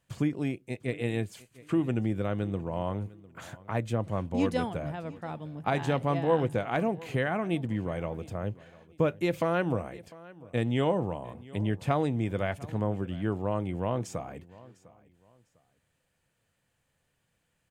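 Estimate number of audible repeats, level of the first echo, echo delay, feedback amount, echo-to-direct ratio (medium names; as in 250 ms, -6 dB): 2, -21.0 dB, 702 ms, 28%, -20.5 dB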